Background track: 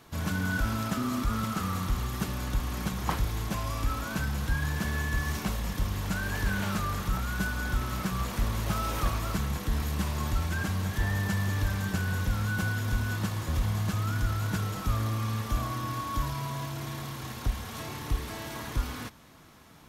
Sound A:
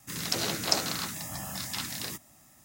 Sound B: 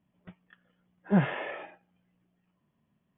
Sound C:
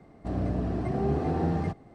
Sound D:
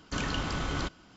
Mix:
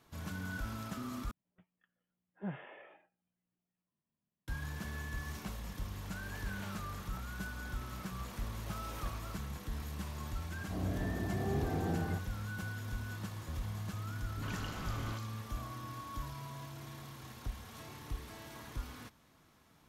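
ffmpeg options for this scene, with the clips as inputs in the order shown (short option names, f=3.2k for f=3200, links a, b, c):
-filter_complex "[0:a]volume=-11.5dB[a];[4:a]acrossover=split=470|4000[b][c][d];[c]adelay=50[e];[d]adelay=130[f];[b][e][f]amix=inputs=3:normalize=0[g];[a]asplit=2[h][i];[h]atrim=end=1.314[j];[2:a]atrim=end=3.17,asetpts=PTS-STARTPTS,volume=-17dB[k];[i]atrim=start=4.476[l];[3:a]atrim=end=1.94,asetpts=PTS-STARTPTS,volume=-8.5dB,afade=t=in:d=0.004:c=hsin,afade=t=out:st=1.936:d=0.004:c=hsin,adelay=10460[m];[g]atrim=end=1.16,asetpts=PTS-STARTPTS,volume=-10dB,afade=t=in:d=0.004:c=hsin,afade=t=out:st=1.156:d=0.004:c=hsin,adelay=14250[n];[j][k]acrossfade=d=0.004:c1=hsin:c2=hsin[o];[o][l]acrossfade=d=0.004:c1=hsin:c2=hsin[p];[p][m][n]amix=inputs=3:normalize=0"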